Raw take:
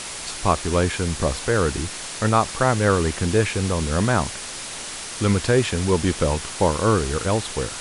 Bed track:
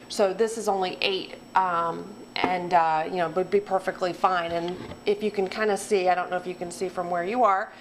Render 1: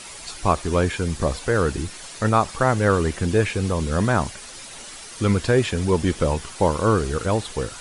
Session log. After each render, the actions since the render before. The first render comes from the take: noise reduction 9 dB, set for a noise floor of -33 dBFS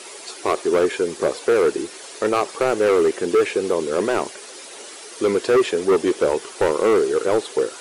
resonant high-pass 390 Hz, resonance Q 3.5; hard clipper -12 dBFS, distortion -9 dB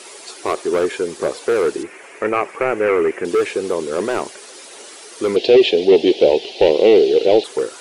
1.83–3.25 s: resonant high shelf 3 kHz -9 dB, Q 3; 5.36–7.44 s: FFT filter 110 Hz 0 dB, 300 Hz +5 dB, 760 Hz +8 dB, 1.2 kHz -20 dB, 2.8 kHz +12 dB, 4.1 kHz +11 dB, 8.3 kHz -15 dB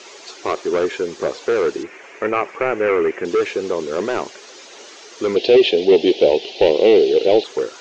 elliptic low-pass 6.7 kHz, stop band 50 dB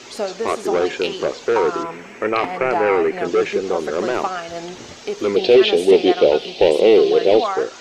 add bed track -2 dB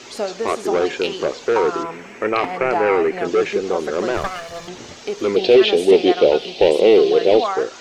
4.17–4.68 s: comb filter that takes the minimum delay 1.7 ms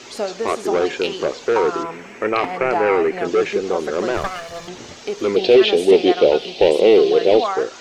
no audible change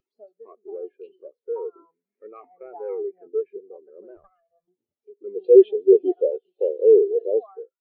upward compressor, threshold -29 dBFS; spectral contrast expander 2.5:1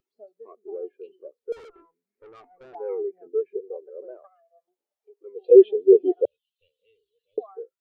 1.52–2.75 s: valve stage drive 44 dB, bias 0.3; 3.54–5.50 s: resonant high-pass 450 Hz -> 810 Hz, resonance Q 2.7; 6.25–7.38 s: inverse Chebyshev band-stop 230–1200 Hz, stop band 50 dB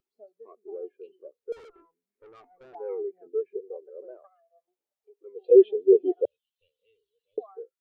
trim -3.5 dB

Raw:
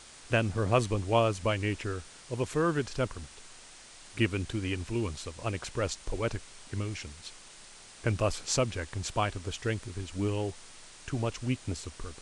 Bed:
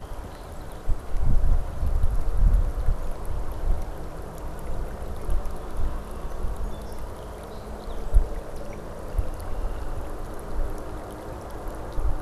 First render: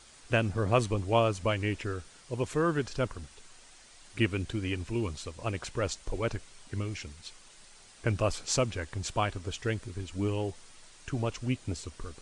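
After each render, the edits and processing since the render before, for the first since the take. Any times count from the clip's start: noise reduction 6 dB, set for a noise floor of -52 dBFS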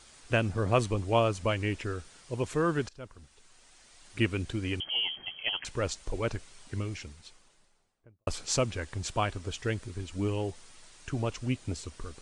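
2.89–4.23 s: fade in, from -19 dB; 4.80–5.65 s: frequency inversion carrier 3.2 kHz; 6.75–8.27 s: studio fade out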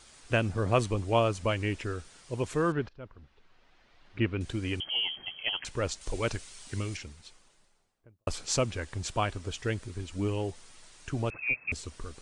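2.72–4.41 s: distance through air 300 m; 6.01–6.97 s: treble shelf 2.5 kHz +8.5 dB; 11.30–11.72 s: frequency inversion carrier 2.6 kHz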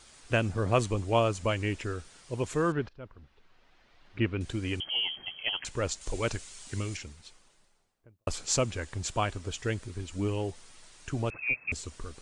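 dynamic bell 7.1 kHz, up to +5 dB, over -59 dBFS, Q 4.5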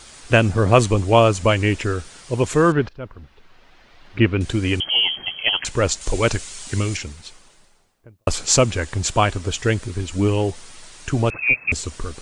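trim +12 dB; peak limiter -1 dBFS, peak gain reduction 1.5 dB

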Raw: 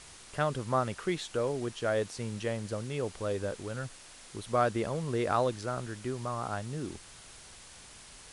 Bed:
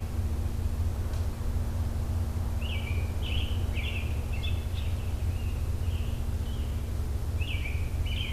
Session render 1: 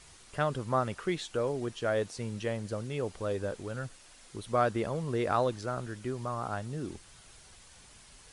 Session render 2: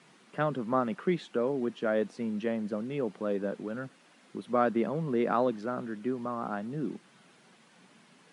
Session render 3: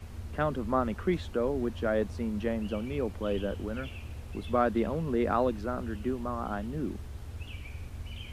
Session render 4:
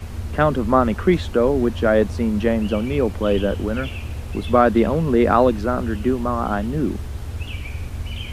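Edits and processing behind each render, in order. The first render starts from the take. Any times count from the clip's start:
noise reduction 6 dB, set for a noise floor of -52 dBFS
steep high-pass 190 Hz 36 dB/octave; tone controls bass +14 dB, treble -14 dB
add bed -10.5 dB
trim +12 dB; peak limiter -2 dBFS, peak gain reduction 1 dB

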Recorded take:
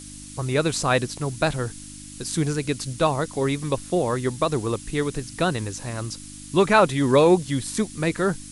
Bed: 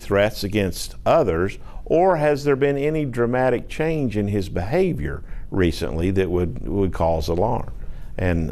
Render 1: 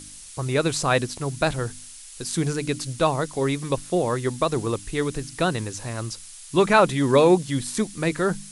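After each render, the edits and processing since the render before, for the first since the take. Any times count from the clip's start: de-hum 50 Hz, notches 6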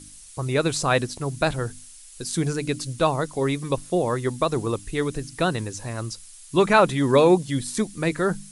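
noise reduction 6 dB, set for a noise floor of -43 dBFS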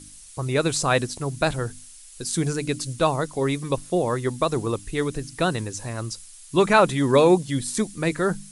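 dynamic bell 8.1 kHz, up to +3 dB, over -41 dBFS, Q 1.1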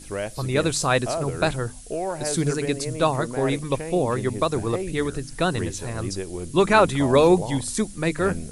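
add bed -11.5 dB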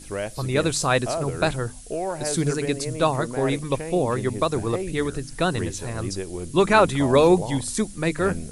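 no audible change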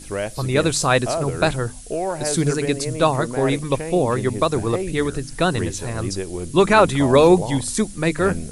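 trim +3.5 dB; peak limiter -3 dBFS, peak gain reduction 2.5 dB

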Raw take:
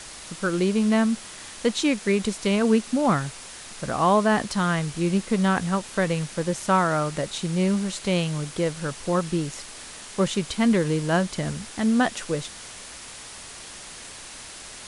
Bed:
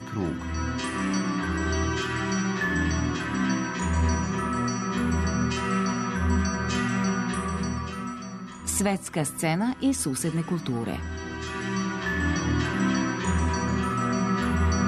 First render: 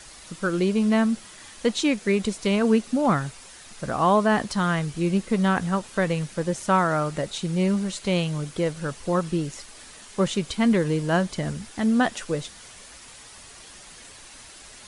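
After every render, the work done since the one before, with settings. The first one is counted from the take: noise reduction 7 dB, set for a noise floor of -41 dBFS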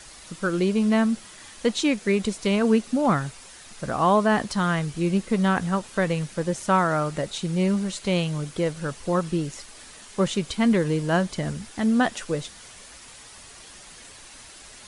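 no audible change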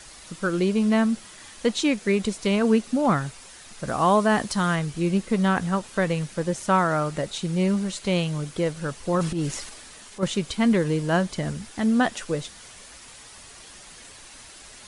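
3.87–4.76 s: treble shelf 6.9 kHz +7 dB; 9.14–10.23 s: transient shaper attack -11 dB, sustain +7 dB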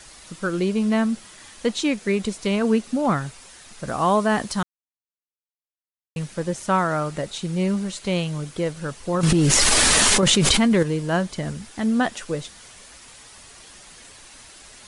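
4.63–6.16 s: mute; 9.23–10.83 s: level flattener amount 100%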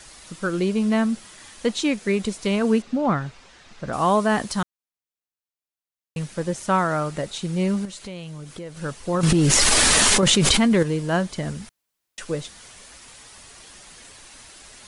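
2.82–3.93 s: distance through air 130 m; 7.85–8.77 s: compression 3:1, threshold -35 dBFS; 11.69–12.18 s: room tone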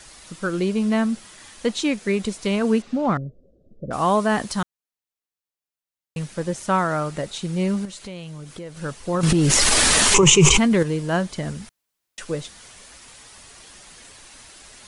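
3.17–3.91 s: elliptic low-pass 570 Hz; 10.14–10.58 s: rippled EQ curve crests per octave 0.73, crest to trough 17 dB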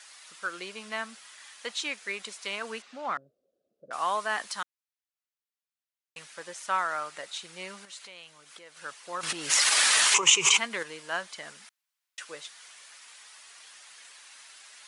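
high-pass 1.4 kHz 12 dB/octave; tilt EQ -2 dB/octave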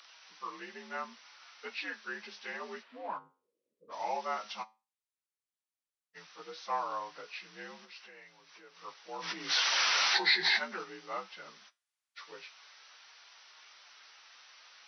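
frequency axis rescaled in octaves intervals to 85%; flange 0.15 Hz, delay 6 ms, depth 5.3 ms, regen +81%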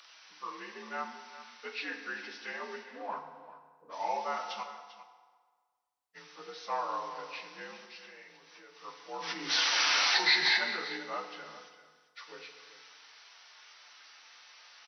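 delay 395 ms -14.5 dB; FDN reverb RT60 1.6 s, low-frequency decay 0.85×, high-frequency decay 0.7×, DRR 5 dB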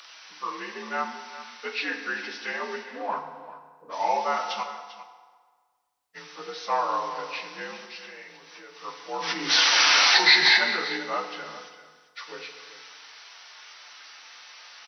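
trim +8.5 dB

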